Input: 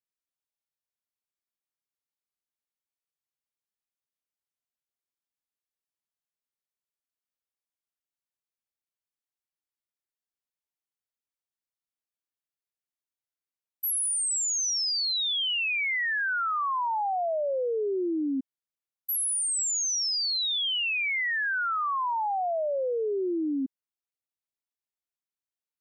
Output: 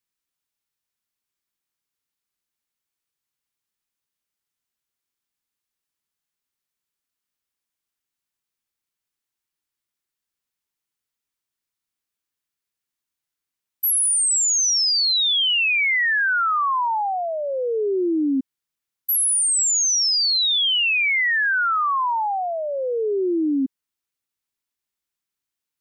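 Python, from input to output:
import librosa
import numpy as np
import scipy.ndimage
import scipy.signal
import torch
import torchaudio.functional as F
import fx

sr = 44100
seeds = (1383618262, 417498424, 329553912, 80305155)

y = fx.peak_eq(x, sr, hz=620.0, db=-6.5, octaves=0.86)
y = y * 10.0 ** (8.5 / 20.0)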